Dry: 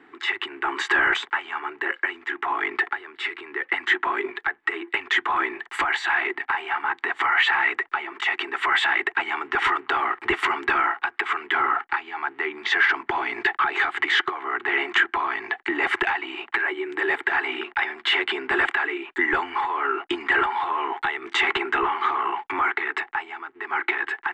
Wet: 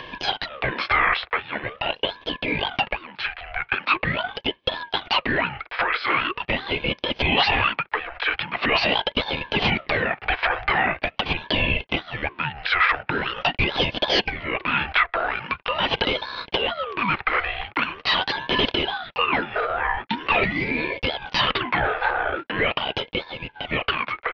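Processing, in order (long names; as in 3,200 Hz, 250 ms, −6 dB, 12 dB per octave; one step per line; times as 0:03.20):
upward compression, threshold −27 dBFS
downsampling to 11,025 Hz
ring modulator whose carrier an LFO sweeps 860 Hz, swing 60%, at 0.43 Hz
level +3.5 dB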